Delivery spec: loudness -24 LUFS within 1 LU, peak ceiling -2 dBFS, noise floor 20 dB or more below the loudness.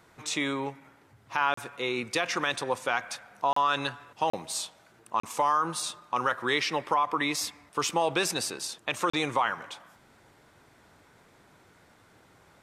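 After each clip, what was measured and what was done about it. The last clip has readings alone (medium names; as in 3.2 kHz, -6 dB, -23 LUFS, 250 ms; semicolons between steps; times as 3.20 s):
dropouts 5; longest dropout 34 ms; loudness -29.0 LUFS; peak level -12.5 dBFS; loudness target -24.0 LUFS
-> interpolate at 1.54/3.53/4.30/5.20/9.10 s, 34 ms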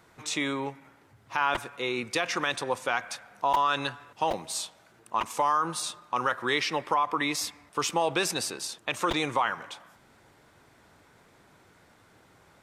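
dropouts 0; loudness -29.0 LUFS; peak level -12.5 dBFS; loudness target -24.0 LUFS
-> trim +5 dB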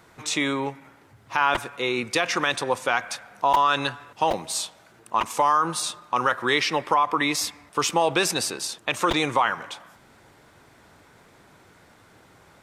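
loudness -24.0 LUFS; peak level -7.5 dBFS; noise floor -55 dBFS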